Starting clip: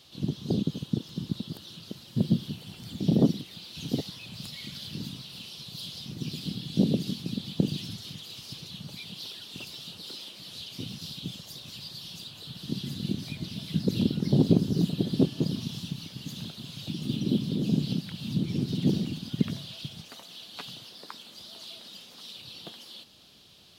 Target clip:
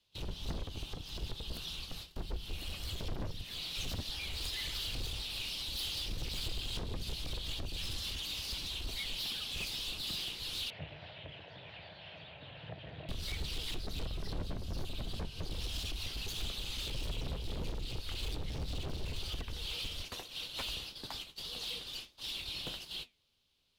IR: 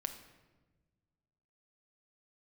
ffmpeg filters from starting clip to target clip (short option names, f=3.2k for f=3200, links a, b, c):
-filter_complex "[0:a]agate=range=-25dB:threshold=-46dB:ratio=16:detection=peak,acompressor=threshold=-32dB:ratio=5,asoftclip=type=hard:threshold=-38.5dB,flanger=delay=7.6:depth=6.5:regen=-73:speed=1.7:shape=triangular,afreqshift=-180,asettb=1/sr,asplit=3[a][b][c];[a]atrim=end=10.704[d];[b]atrim=start=10.7:end=13.09,asetpts=PTS-STARTPTS,afade=t=in:d=0.004:c=qsin,afade=t=out:st=2.386:d=0.004:c=qsin,highpass=f=100:w=0.5412,highpass=f=100:w=1.3066,equalizer=f=140:t=q:w=4:g=5,equalizer=f=240:t=q:w=4:g=-10,equalizer=f=360:t=q:w=4:g=-8,equalizer=f=640:t=q:w=4:g=10,equalizer=f=1.2k:t=q:w=4:g=-7,equalizer=f=1.8k:t=q:w=4:g=4,lowpass=f=2.3k:w=0.5412,lowpass=f=2.3k:w=1.3066[e];[c]atrim=start=13.086[f];[d][e]acrossfade=d=0.004:c1=hsin:c2=qsin[g];[g][f]acrossfade=d=0.004:c1=qsin:c2=hsin,volume=8.5dB"